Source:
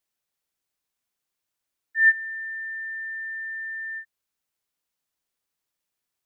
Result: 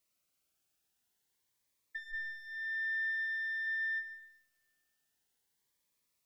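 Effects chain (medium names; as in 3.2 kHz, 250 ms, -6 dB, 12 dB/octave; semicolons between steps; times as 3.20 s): single-diode clipper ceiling -23 dBFS; compressor with a negative ratio -34 dBFS, ratio -1; 3.09–3.67 s: doubling 16 ms -7.5 dB; Schroeder reverb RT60 1.2 s, combs from 30 ms, DRR 7.5 dB; Shepard-style phaser rising 0.48 Hz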